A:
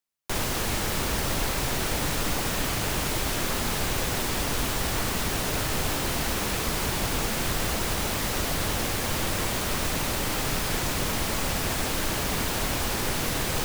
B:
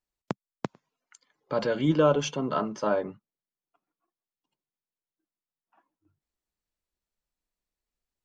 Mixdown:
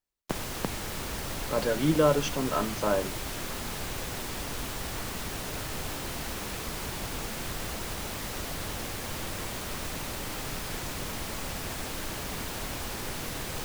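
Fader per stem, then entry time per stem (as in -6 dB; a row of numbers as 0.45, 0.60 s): -8.0, -1.0 dB; 0.00, 0.00 s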